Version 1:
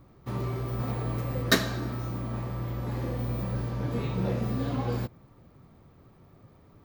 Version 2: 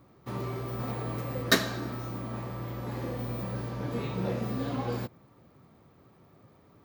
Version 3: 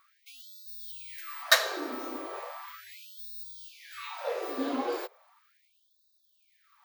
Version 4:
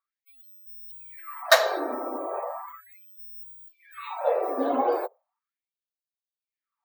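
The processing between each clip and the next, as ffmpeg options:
-af "highpass=f=170:p=1"
-af "afftfilt=real='re*gte(b*sr/1024,240*pow(3600/240,0.5+0.5*sin(2*PI*0.37*pts/sr)))':imag='im*gte(b*sr/1024,240*pow(3600/240,0.5+0.5*sin(2*PI*0.37*pts/sr)))':win_size=1024:overlap=0.75,volume=3dB"
-af "afftdn=nr=29:nf=-43,equalizer=f=690:t=o:w=1.3:g=12.5"

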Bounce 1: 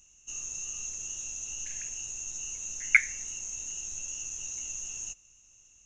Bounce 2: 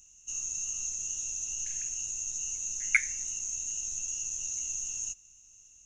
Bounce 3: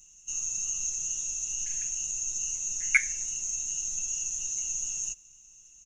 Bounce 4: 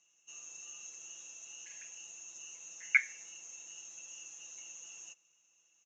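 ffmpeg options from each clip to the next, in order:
-af "bass=f=250:g=4,treble=f=4k:g=9,volume=-5dB"
-af "aecho=1:1:6:0.83"
-af "highpass=440,lowpass=2.9k,volume=-2.5dB"

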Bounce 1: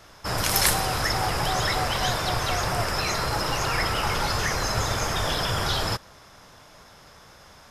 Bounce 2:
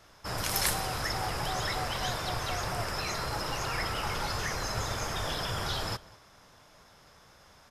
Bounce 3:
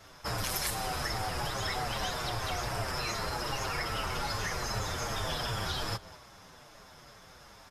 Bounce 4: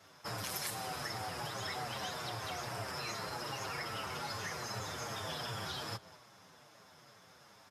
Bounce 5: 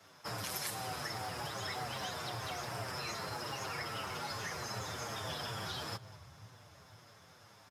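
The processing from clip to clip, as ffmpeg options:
-filter_complex "[0:a]asplit=2[a][b];[b]adelay=198.3,volume=-21dB,highshelf=f=4k:g=-4.46[c];[a][c]amix=inputs=2:normalize=0,volume=-7.5dB"
-filter_complex "[0:a]acompressor=threshold=-36dB:ratio=3,asplit=2[a][b];[b]adelay=7.1,afreqshift=-2.5[c];[a][c]amix=inputs=2:normalize=1,volume=7dB"
-af "highpass=f=100:w=0.5412,highpass=f=100:w=1.3066,volume=-6dB"
-filter_complex "[0:a]acrossover=split=140|990[a][b][c];[a]aecho=1:1:503|1006|1509|2012|2515|3018:0.631|0.303|0.145|0.0698|0.0335|0.0161[d];[b]acrusher=bits=6:mode=log:mix=0:aa=0.000001[e];[d][e][c]amix=inputs=3:normalize=0"

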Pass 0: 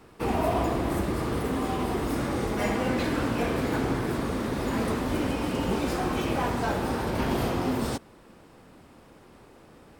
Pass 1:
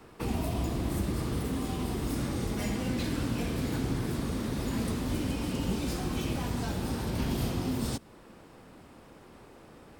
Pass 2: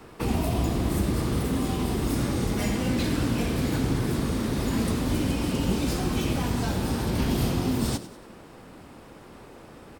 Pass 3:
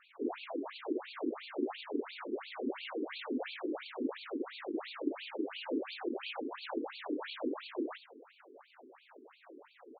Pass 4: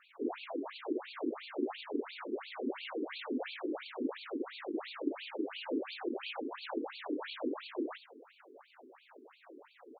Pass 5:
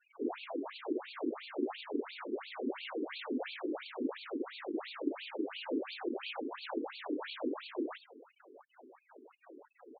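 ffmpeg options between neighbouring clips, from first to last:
-filter_complex "[0:a]acrossover=split=260|3000[a][b][c];[b]acompressor=threshold=-39dB:ratio=6[d];[a][d][c]amix=inputs=3:normalize=0"
-filter_complex "[0:a]asplit=5[a][b][c][d][e];[b]adelay=96,afreqshift=60,volume=-14.5dB[f];[c]adelay=192,afreqshift=120,volume=-21.4dB[g];[d]adelay=288,afreqshift=180,volume=-28.4dB[h];[e]adelay=384,afreqshift=240,volume=-35.3dB[i];[a][f][g][h][i]amix=inputs=5:normalize=0,volume=5.5dB"
-af "afftfilt=real='hypot(re,im)*cos(2*PI*random(0))':imag='hypot(re,im)*sin(2*PI*random(1))':win_size=512:overlap=0.75,afftfilt=real='re*between(b*sr/1024,310*pow(3300/310,0.5+0.5*sin(2*PI*2.9*pts/sr))/1.41,310*pow(3300/310,0.5+0.5*sin(2*PI*2.9*pts/sr))*1.41)':imag='im*between(b*sr/1024,310*pow(3300/310,0.5+0.5*sin(2*PI*2.9*pts/sr))/1.41,310*pow(3300/310,0.5+0.5*sin(2*PI*2.9*pts/sr))*1.41)':win_size=1024:overlap=0.75,volume=3.5dB"
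-af "highpass=100"
-af "afftfilt=real='re*gte(hypot(re,im),0.00282)':imag='im*gte(hypot(re,im),0.00282)':win_size=1024:overlap=0.75"

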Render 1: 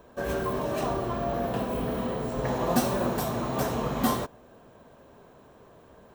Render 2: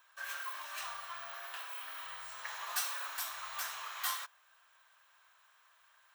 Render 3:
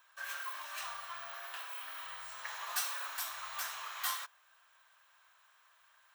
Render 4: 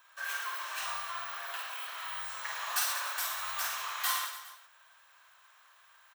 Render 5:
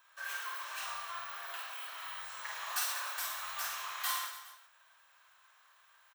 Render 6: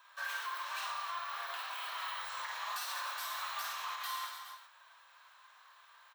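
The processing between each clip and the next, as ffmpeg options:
-af "highpass=f=1.3k:w=0.5412,highpass=f=1.3k:w=1.3066,volume=-2dB"
-af "bandreject=f=410:w=12"
-af "aecho=1:1:50|112.5|190.6|288.3|410.4:0.631|0.398|0.251|0.158|0.1,volume=3.5dB"
-filter_complex "[0:a]asplit=2[a][b];[b]adelay=28,volume=-10.5dB[c];[a][c]amix=inputs=2:normalize=0,volume=-4dB"
-af "equalizer=f=250:t=o:w=1:g=-9,equalizer=f=500:t=o:w=1:g=7,equalizer=f=1k:t=o:w=1:g=10,equalizer=f=2k:t=o:w=1:g=4,equalizer=f=4k:t=o:w=1:g=9,equalizer=f=16k:t=o:w=1:g=4,alimiter=level_in=1.5dB:limit=-24dB:level=0:latency=1:release=303,volume=-1.5dB,flanger=delay=4.9:depth=1.1:regen=-62:speed=1.1:shape=sinusoidal"

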